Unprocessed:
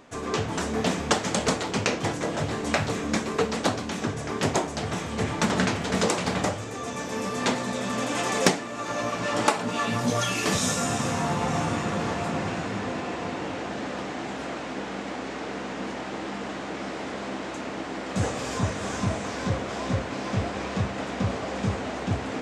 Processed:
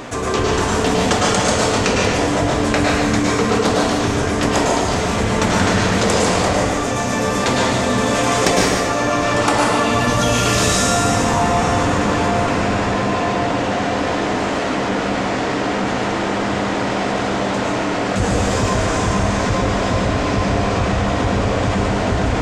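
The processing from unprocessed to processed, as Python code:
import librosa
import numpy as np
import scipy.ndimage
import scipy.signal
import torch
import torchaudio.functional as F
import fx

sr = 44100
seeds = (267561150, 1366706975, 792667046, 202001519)

y = fx.octave_divider(x, sr, octaves=1, level_db=-5.0)
y = fx.peak_eq(y, sr, hz=160.0, db=-6.5, octaves=0.32)
y = y + 10.0 ** (-9.0 / 20.0) * np.pad(y, (int(146 * sr / 1000.0), 0))[:len(y)]
y = fx.rev_plate(y, sr, seeds[0], rt60_s=0.92, hf_ratio=0.85, predelay_ms=95, drr_db=-2.5)
y = fx.env_flatten(y, sr, amount_pct=50)
y = y * 10.0 ** (2.0 / 20.0)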